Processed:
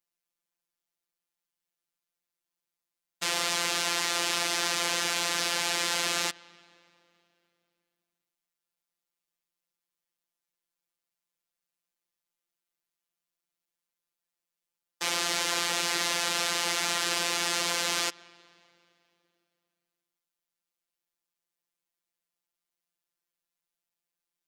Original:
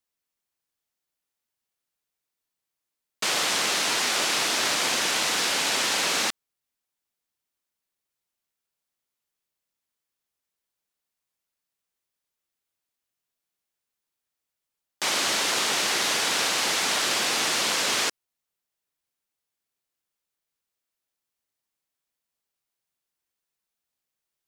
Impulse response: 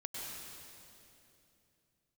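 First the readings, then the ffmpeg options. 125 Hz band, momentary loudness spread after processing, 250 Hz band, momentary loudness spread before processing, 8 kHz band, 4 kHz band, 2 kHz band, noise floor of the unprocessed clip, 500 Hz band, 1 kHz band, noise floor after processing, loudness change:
−1.0 dB, 3 LU, −3.5 dB, 3 LU, −4.5 dB, −4.5 dB, −4.0 dB, below −85 dBFS, −4.0 dB, −4.0 dB, below −85 dBFS, −4.0 dB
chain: -filter_complex "[0:a]asplit=2[link_01][link_02];[1:a]atrim=start_sample=2205,lowpass=4000[link_03];[link_02][link_03]afir=irnorm=-1:irlink=0,volume=-20dB[link_04];[link_01][link_04]amix=inputs=2:normalize=0,afftfilt=real='hypot(re,im)*cos(PI*b)':imag='0':win_size=1024:overlap=0.75,volume=-1dB"

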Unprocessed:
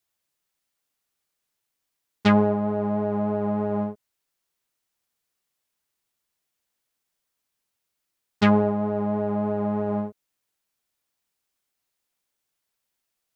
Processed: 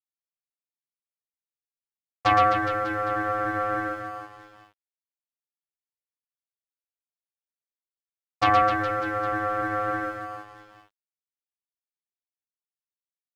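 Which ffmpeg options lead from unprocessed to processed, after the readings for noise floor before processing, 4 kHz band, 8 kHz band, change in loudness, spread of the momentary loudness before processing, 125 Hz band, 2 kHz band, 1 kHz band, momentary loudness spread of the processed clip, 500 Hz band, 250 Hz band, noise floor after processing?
−81 dBFS, +1.0 dB, can't be measured, −0.5 dB, 8 LU, −7.5 dB, +8.0 dB, +7.5 dB, 15 LU, −4.0 dB, −11.0 dB, below −85 dBFS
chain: -af "aecho=1:1:120|258|416.7|599.2|809.1:0.631|0.398|0.251|0.158|0.1,aeval=exprs='val(0)*sin(2*PI*940*n/s)':channel_layout=same,aeval=exprs='sgn(val(0))*max(abs(val(0))-0.00237,0)':channel_layout=same"

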